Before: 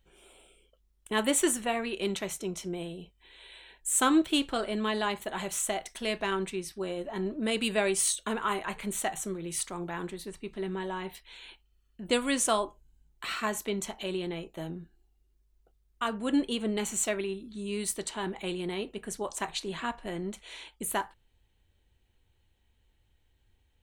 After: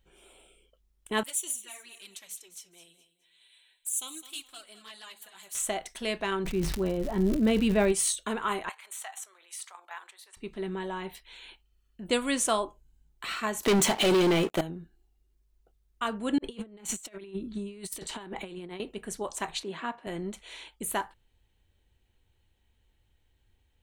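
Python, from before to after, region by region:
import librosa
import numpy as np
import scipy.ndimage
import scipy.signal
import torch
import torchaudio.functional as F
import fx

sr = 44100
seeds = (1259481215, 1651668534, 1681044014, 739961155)

y = fx.chain(x, sr, fx.pre_emphasis(coefficient=0.97),
    fx.env_flanger(rest_ms=8.9, full_db=-29.0),
    fx.echo_feedback(ms=210, feedback_pct=31, wet_db=-13.5), at=(1.23, 5.55))
y = fx.riaa(y, sr, side='playback', at=(6.44, 7.91), fade=0.02)
y = fx.dmg_crackle(y, sr, seeds[0], per_s=180.0, level_db=-34.0, at=(6.44, 7.91), fade=0.02)
y = fx.sustainer(y, sr, db_per_s=33.0, at=(6.44, 7.91), fade=0.02)
y = fx.chain(y, sr, fx.highpass(hz=790.0, slope=24),
    fx.level_steps(step_db=10), at=(8.69, 10.37))
y = fx.chain(y, sr, fx.highpass(hz=130.0, slope=12),
    fx.leveller(passes=5), at=(13.63, 14.61))
y = fx.chain(y, sr, fx.over_compress(threshold_db=-38.0, ratio=-0.5),
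    fx.band_widen(depth_pct=70), at=(16.38, 18.8))
y = fx.chain(y, sr, fx.highpass(hz=190.0, slope=12),
    fx.high_shelf(hz=4400.0, db=-12.0), at=(19.63, 20.07))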